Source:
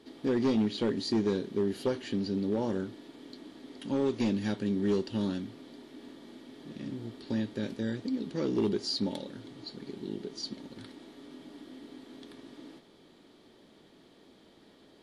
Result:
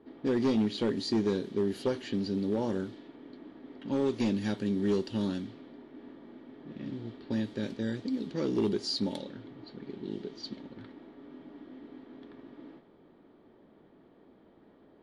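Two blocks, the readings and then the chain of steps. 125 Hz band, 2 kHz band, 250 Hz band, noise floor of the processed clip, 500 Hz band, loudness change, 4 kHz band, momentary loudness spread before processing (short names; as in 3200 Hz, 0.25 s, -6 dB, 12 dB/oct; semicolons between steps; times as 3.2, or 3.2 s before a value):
0.0 dB, 0.0 dB, 0.0 dB, -60 dBFS, 0.0 dB, 0.0 dB, -0.5 dB, 20 LU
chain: low-pass opened by the level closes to 1300 Hz, open at -28 dBFS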